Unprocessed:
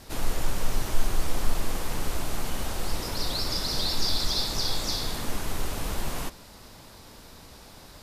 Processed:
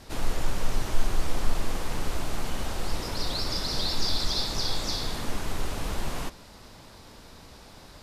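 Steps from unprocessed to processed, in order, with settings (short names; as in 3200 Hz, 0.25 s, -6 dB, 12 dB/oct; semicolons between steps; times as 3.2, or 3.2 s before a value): high shelf 11000 Hz -11.5 dB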